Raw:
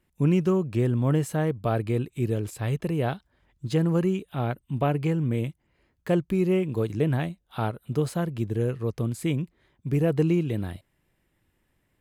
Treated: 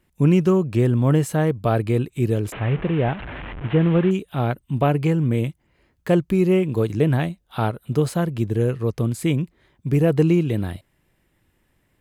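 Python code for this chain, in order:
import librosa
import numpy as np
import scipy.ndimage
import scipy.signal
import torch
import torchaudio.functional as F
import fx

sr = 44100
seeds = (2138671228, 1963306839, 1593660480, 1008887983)

y = fx.delta_mod(x, sr, bps=16000, step_db=-32.5, at=(2.52, 4.11))
y = F.gain(torch.from_numpy(y), 5.5).numpy()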